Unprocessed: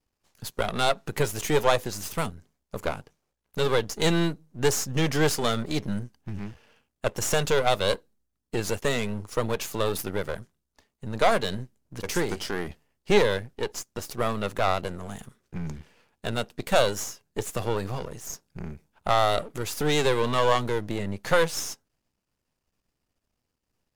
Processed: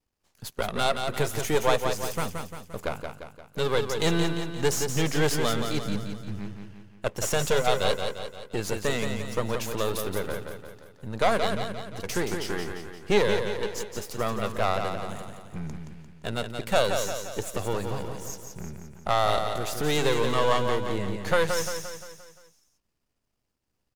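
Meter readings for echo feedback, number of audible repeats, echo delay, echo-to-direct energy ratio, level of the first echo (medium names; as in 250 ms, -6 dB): 51%, 5, 174 ms, -4.5 dB, -6.0 dB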